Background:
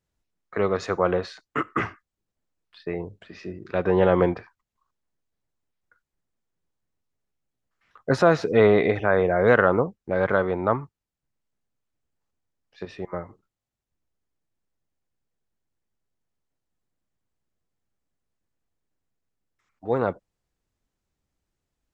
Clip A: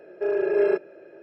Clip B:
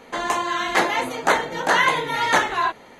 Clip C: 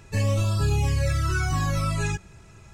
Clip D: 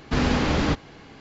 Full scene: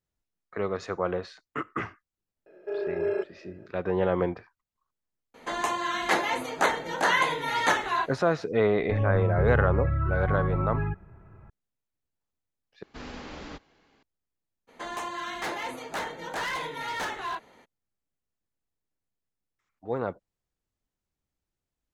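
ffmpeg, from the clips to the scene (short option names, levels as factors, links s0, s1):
-filter_complex "[2:a]asplit=2[s0][s1];[0:a]volume=0.473[s2];[3:a]lowpass=f=1600:w=0.5412,lowpass=f=1600:w=1.3066[s3];[4:a]equalizer=f=110:w=0.76:g=-9.5[s4];[s1]volume=7.94,asoftclip=hard,volume=0.126[s5];[s2]asplit=2[s6][s7];[s6]atrim=end=12.834[s8];[s4]atrim=end=1.2,asetpts=PTS-STARTPTS,volume=0.15[s9];[s7]atrim=start=14.026[s10];[1:a]atrim=end=1.22,asetpts=PTS-STARTPTS,volume=0.447,afade=t=in:d=0.004:c=hsin,afade=t=out:st=1.216:d=0.004:c=hsin,adelay=2460[s11];[s0]atrim=end=2.99,asetpts=PTS-STARTPTS,volume=0.531,afade=t=in:d=0.004:c=hsin,afade=t=out:st=2.986:d=0.004:c=hsin,adelay=5340[s12];[s3]atrim=end=2.73,asetpts=PTS-STARTPTS,volume=0.794,afade=t=in:d=0.004:c=hsin,afade=t=out:st=2.726:d=0.004:c=hsin,adelay=8770[s13];[s5]atrim=end=2.99,asetpts=PTS-STARTPTS,volume=0.299,afade=t=in:d=0.02,afade=t=out:st=2.97:d=0.02,adelay=14670[s14];[s8][s9]acrossfade=d=0.004:c1=hsin:c2=hsin[s15];[s15][s10]acrossfade=d=0.004:c1=hsin:c2=hsin[s16];[s16][s11][s12][s13][s14]amix=inputs=5:normalize=0"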